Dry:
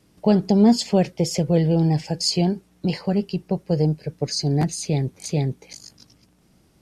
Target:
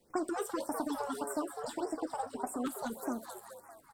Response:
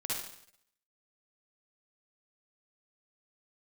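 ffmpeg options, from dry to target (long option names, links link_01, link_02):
-filter_complex "[0:a]flanger=delay=3.5:depth=2.4:regen=55:speed=1:shape=sinusoidal,acrossover=split=520|1700[link_01][link_02][link_03];[link_01]acompressor=threshold=-28dB:ratio=4[link_04];[link_02]acompressor=threshold=-34dB:ratio=4[link_05];[link_03]acompressor=threshold=-40dB:ratio=4[link_06];[link_04][link_05][link_06]amix=inputs=3:normalize=0,flanger=delay=7.8:depth=9.2:regen=-72:speed=0.42:shape=triangular,asplit=7[link_07][link_08][link_09][link_10][link_11][link_12][link_13];[link_08]adelay=352,afreqshift=81,volume=-8dB[link_14];[link_09]adelay=704,afreqshift=162,volume=-13.7dB[link_15];[link_10]adelay=1056,afreqshift=243,volume=-19.4dB[link_16];[link_11]adelay=1408,afreqshift=324,volume=-25dB[link_17];[link_12]adelay=1760,afreqshift=405,volume=-30.7dB[link_18];[link_13]adelay=2112,afreqshift=486,volume=-36.4dB[link_19];[link_07][link_14][link_15][link_16][link_17][link_18][link_19]amix=inputs=7:normalize=0,asplit=2[link_20][link_21];[1:a]atrim=start_sample=2205[link_22];[link_21][link_22]afir=irnorm=-1:irlink=0,volume=-17.5dB[link_23];[link_20][link_23]amix=inputs=2:normalize=0,asetrate=76440,aresample=44100,afftfilt=real='re*(1-between(b*sr/1024,260*pow(3800/260,0.5+0.5*sin(2*PI*1.7*pts/sr))/1.41,260*pow(3800/260,0.5+0.5*sin(2*PI*1.7*pts/sr))*1.41))':imag='im*(1-between(b*sr/1024,260*pow(3800/260,0.5+0.5*sin(2*PI*1.7*pts/sr))/1.41,260*pow(3800/260,0.5+0.5*sin(2*PI*1.7*pts/sr))*1.41))':win_size=1024:overlap=0.75,volume=-2dB"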